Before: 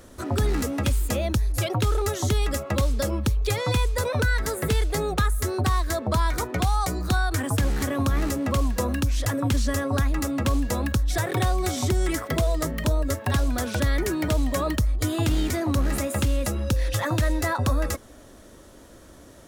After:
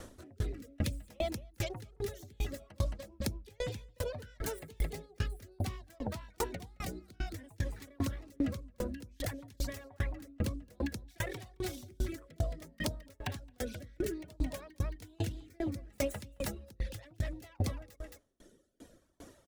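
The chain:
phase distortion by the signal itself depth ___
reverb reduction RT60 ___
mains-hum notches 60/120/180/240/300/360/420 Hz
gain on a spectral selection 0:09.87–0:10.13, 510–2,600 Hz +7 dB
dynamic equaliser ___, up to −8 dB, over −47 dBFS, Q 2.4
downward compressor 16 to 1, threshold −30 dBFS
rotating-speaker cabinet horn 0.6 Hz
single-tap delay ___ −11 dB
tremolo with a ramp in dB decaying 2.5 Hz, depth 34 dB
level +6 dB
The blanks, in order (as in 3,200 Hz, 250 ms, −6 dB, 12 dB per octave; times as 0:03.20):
0.17 ms, 1.7 s, 1,200 Hz, 219 ms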